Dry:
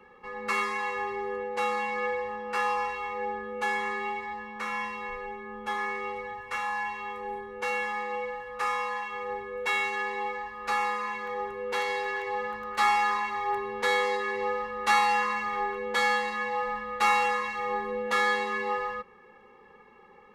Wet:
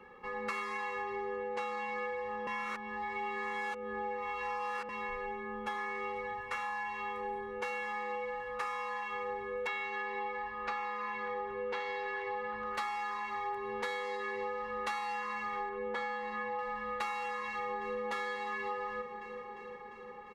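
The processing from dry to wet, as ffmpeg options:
ffmpeg -i in.wav -filter_complex "[0:a]asettb=1/sr,asplit=3[link_01][link_02][link_03];[link_01]atrim=end=1.034[link_04];[link_02]atrim=start=1.03:end=1.97,asetpts=PTS-STARTPTS,afade=type=in:duration=0.004:curve=qsin,afade=type=out:start_time=0.936:duration=0.004:curve=qsin,lowpass=8700[link_05];[link_03]atrim=start=1.966[link_06];[link_04][link_05]acrossfade=duration=0.004:curve1=hsin:curve2=qsin[link_07];[link_07][link_06]acrossfade=duration=0.004:curve1=qsin:curve2=hsin,asettb=1/sr,asplit=3[link_08][link_09][link_10];[link_08]atrim=end=9.674[link_11];[link_09]atrim=start=9.67:end=12.66,asetpts=PTS-STARTPTS,afade=type=in:duration=0.004:curve=qsin,afade=type=out:start_time=2.986:duration=0.004:curve=qsin,lowpass=4200[link_12];[link_10]atrim=start=12.656[link_13];[link_11][link_12]acrossfade=duration=0.004:curve1=hsin:curve2=qsin[link_14];[link_14][link_13]acrossfade=duration=0.004:curve1=qsin:curve2=hsin,asettb=1/sr,asplit=3[link_15][link_16][link_17];[link_15]atrim=end=15.694[link_18];[link_16]atrim=start=15.69:end=16.59,asetpts=PTS-STARTPTS,afade=type=in:duration=0.004:curve=qsin,afade=type=out:start_time=0.896:duration=0.004:curve=qsin,lowpass=frequency=1500:poles=1[link_19];[link_17]atrim=start=16.586[link_20];[link_18][link_19]acrossfade=duration=0.004:curve1=hsin:curve2=qsin[link_21];[link_21][link_20]acrossfade=duration=0.004:curve1=qsin:curve2=hsin,asplit=2[link_22][link_23];[link_23]afade=type=in:start_time=17.46:duration=0.01,afade=type=out:start_time=18.01:duration=0.01,aecho=0:1:350|700|1050|1400|1750|2100|2450|2800|3150|3500|3850|4200:0.446684|0.335013|0.25126|0.188445|0.141333|0.106|0.0795001|0.0596251|0.0447188|0.0335391|0.0251543|0.0188657[link_24];[link_22][link_24]amix=inputs=2:normalize=0,asplit=3[link_25][link_26][link_27];[link_25]atrim=end=2.472[link_28];[link_26]atrim=start=2.468:end=4.892,asetpts=PTS-STARTPTS,areverse[link_29];[link_27]atrim=start=4.888[link_30];[link_28][link_29]acrossfade=duration=0.004:curve1=hsin:curve2=hsin[link_31];[link_31][link_30]acrossfade=duration=0.004:curve1=hsin:curve2=hsin,highshelf=frequency=6400:gain=-5,acompressor=threshold=-34dB:ratio=10" out.wav

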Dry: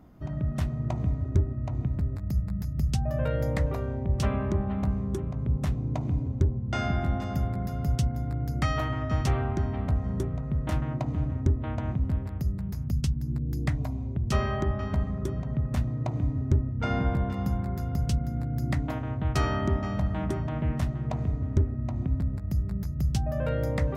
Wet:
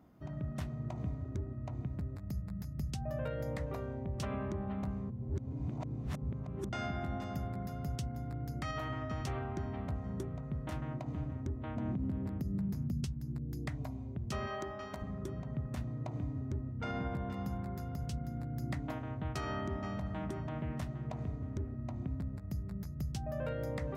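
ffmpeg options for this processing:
ffmpeg -i in.wav -filter_complex "[0:a]asettb=1/sr,asplit=3[link_01][link_02][link_03];[link_01]atrim=end=11.764[link_04];[link_02]atrim=start=11.76:end=13.04,asetpts=PTS-STARTPTS,afade=type=in:duration=0.004:curve=qsin,afade=type=out:start_time=1.276:duration=0.004:curve=qsin,equalizer=frequency=230:width_type=o:width=2:gain=11[link_05];[link_03]atrim=start=13.036[link_06];[link_04][link_05]acrossfade=duration=0.004:curve1=hsin:curve2=qsin[link_07];[link_07][link_06]acrossfade=duration=0.004:curve1=qsin:curve2=hsin,asettb=1/sr,asplit=3[link_08][link_09][link_10];[link_08]atrim=end=14.474[link_11];[link_09]atrim=start=14.47:end=15.02,asetpts=PTS-STARTPTS,afade=type=in:duration=0.004:curve=qsin,afade=type=out:start_time=0.546:duration=0.004:curve=qsin,bass=frequency=250:gain=-12,treble=frequency=4000:gain=7[link_12];[link_10]atrim=start=15.016[link_13];[link_11][link_12]acrossfade=duration=0.004:curve1=hsin:curve2=qsin[link_14];[link_14][link_13]acrossfade=duration=0.004:curve1=qsin:curve2=hsin,asplit=3[link_15][link_16][link_17];[link_15]atrim=end=5.102[link_18];[link_16]atrim=start=5.098:end=6.692,asetpts=PTS-STARTPTS,areverse[link_19];[link_17]atrim=start=6.688[link_20];[link_18][link_19]acrossfade=duration=0.004:curve1=hsin:curve2=hsin[link_21];[link_21][link_20]acrossfade=duration=0.004:curve1=hsin:curve2=hsin,highpass=frequency=120:poles=1,alimiter=limit=-21.5dB:level=0:latency=1:release=80,volume=-6.5dB" out.wav

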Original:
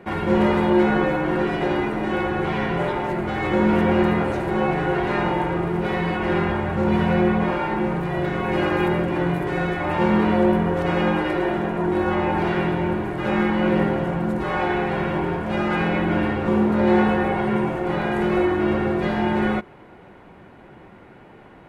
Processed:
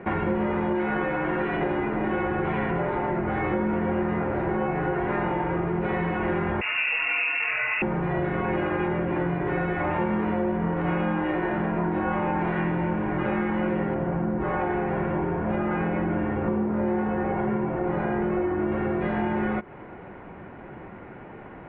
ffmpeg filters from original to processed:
ffmpeg -i in.wav -filter_complex "[0:a]asettb=1/sr,asplit=3[link_01][link_02][link_03];[link_01]atrim=end=0.754[link_04];[link_02]atrim=start=0.75:end=1.57,asetpts=PTS-STARTPTS,afade=type=in:duration=0.004:curve=qsin,afade=type=out:start_time=0.816:duration=0.004:curve=qsin,tiltshelf=frequency=970:gain=-3.5[link_05];[link_03]atrim=start=1.566[link_06];[link_04][link_05]acrossfade=duration=0.004:curve1=hsin:curve2=qsin[link_07];[link_07][link_06]acrossfade=duration=0.004:curve1=qsin:curve2=hsin,asettb=1/sr,asplit=3[link_08][link_09][link_10];[link_08]atrim=end=2.714[link_11];[link_09]atrim=start=2.71:end=5.24,asetpts=PTS-STARTPTS,afade=type=in:duration=0.004:curve=qsin,afade=type=out:start_time=2.526:duration=0.004:curve=qsin,acrossover=split=3100[link_12][link_13];[link_13]adelay=40[link_14];[link_12][link_14]amix=inputs=2:normalize=0,atrim=end_sample=111573[link_15];[link_10]atrim=start=5.236[link_16];[link_11][link_15]acrossfade=duration=0.004:curve1=hsin:curve2=qsin[link_17];[link_17][link_16]acrossfade=duration=0.004:curve1=qsin:curve2=hsin,asettb=1/sr,asplit=3[link_18][link_19][link_20];[link_18]atrim=end=6.614[link_21];[link_19]atrim=start=6.61:end=7.82,asetpts=PTS-STARTPTS,afade=type=in:duration=0.004:curve=qsin,afade=type=out:start_time=1.206:duration=0.004:curve=qsin,lowpass=frequency=2500:width_type=q:width=0.5098,lowpass=frequency=2500:width_type=q:width=0.6013,lowpass=frequency=2500:width_type=q:width=0.9,lowpass=frequency=2500:width_type=q:width=2.563,afreqshift=-2900[link_22];[link_20]atrim=start=7.816[link_23];[link_21][link_22]acrossfade=duration=0.004:curve1=hsin:curve2=qsin[link_24];[link_24][link_23]acrossfade=duration=0.004:curve1=qsin:curve2=hsin,asettb=1/sr,asplit=3[link_25][link_26][link_27];[link_25]atrim=end=10.604[link_28];[link_26]atrim=start=10.6:end=13.23,asetpts=PTS-STARTPTS,afade=type=in:duration=0.004:curve=qsin,afade=type=out:start_time=2.626:duration=0.004:curve=qsin,asplit=2[link_29][link_30];[link_30]adelay=29,volume=-3.5dB[link_31];[link_29][link_31]amix=inputs=2:normalize=0,atrim=end_sample=115983[link_32];[link_27]atrim=start=13.226[link_33];[link_28][link_32]acrossfade=duration=0.004:curve1=hsin:curve2=qsin[link_34];[link_34][link_33]acrossfade=duration=0.004:curve1=qsin:curve2=hsin,asettb=1/sr,asplit=3[link_35][link_36][link_37];[link_35]atrim=end=13.944[link_38];[link_36]atrim=start=13.94:end=18.72,asetpts=PTS-STARTPTS,afade=type=in:duration=0.004:curve=qsin,afade=type=out:start_time=4.776:duration=0.004:curve=qsin,highshelf=frequency=2100:gain=-9.5[link_39];[link_37]atrim=start=18.716[link_40];[link_38][link_39]acrossfade=duration=0.004:curve1=hsin:curve2=qsin[link_41];[link_41][link_40]acrossfade=duration=0.004:curve1=qsin:curve2=hsin,lowpass=frequency=2500:width=0.5412,lowpass=frequency=2500:width=1.3066,acompressor=threshold=-27dB:ratio=6,volume=4dB" out.wav

